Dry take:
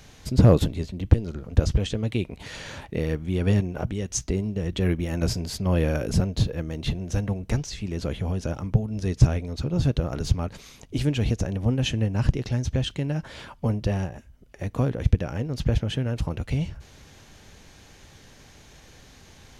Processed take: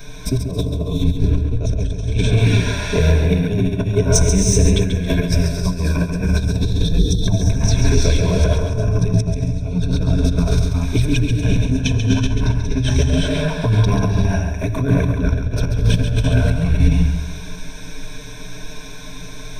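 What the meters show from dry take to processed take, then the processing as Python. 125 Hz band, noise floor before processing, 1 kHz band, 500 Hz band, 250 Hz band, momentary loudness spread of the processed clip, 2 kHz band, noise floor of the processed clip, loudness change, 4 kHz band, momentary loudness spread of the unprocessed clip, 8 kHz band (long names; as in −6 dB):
+8.0 dB, −51 dBFS, +7.0 dB, +6.5 dB, +7.5 dB, 14 LU, +10.0 dB, −30 dBFS, +8.0 dB, +8.5 dB, 9 LU, +12.0 dB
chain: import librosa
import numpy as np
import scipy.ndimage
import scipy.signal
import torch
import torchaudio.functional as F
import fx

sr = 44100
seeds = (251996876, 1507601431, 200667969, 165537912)

p1 = fx.spec_erase(x, sr, start_s=6.59, length_s=0.62, low_hz=520.0, high_hz=3100.0)
p2 = fx.env_flanger(p1, sr, rest_ms=7.3, full_db=-16.0)
p3 = fx.low_shelf(p2, sr, hz=70.0, db=9.5)
p4 = fx.hum_notches(p3, sr, base_hz=50, count=2)
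p5 = fx.rev_gated(p4, sr, seeds[0], gate_ms=410, shape='rising', drr_db=-0.5)
p6 = fx.over_compress(p5, sr, threshold_db=-26.0, ratio=-1.0)
p7 = fx.ripple_eq(p6, sr, per_octave=1.6, db=15)
p8 = p7 + fx.echo_feedback(p7, sr, ms=137, feedback_pct=37, wet_db=-7.5, dry=0)
y = F.gain(torch.from_numpy(p8), 6.0).numpy()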